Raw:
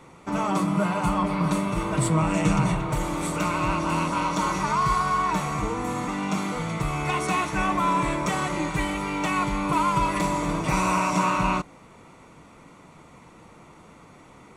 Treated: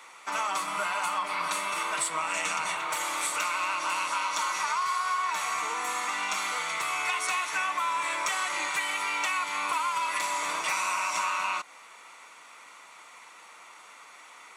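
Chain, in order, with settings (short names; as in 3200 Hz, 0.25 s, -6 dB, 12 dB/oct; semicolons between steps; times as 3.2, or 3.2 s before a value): HPF 1300 Hz 12 dB/oct; compressor, threshold -33 dBFS, peak gain reduction 8.5 dB; gain +7 dB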